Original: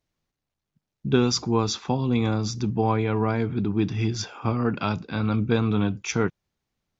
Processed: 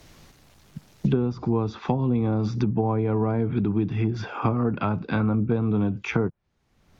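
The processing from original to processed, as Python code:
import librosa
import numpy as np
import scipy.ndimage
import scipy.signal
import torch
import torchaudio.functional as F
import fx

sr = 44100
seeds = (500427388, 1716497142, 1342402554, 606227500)

y = fx.env_lowpass_down(x, sr, base_hz=830.0, full_db=-19.0)
y = fx.band_squash(y, sr, depth_pct=100)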